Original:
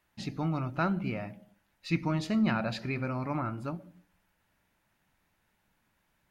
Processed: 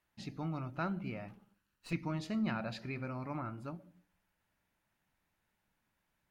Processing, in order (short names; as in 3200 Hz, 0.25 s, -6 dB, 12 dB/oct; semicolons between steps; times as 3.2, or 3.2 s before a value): 1.28–1.93 minimum comb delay 0.7 ms; gain -7.5 dB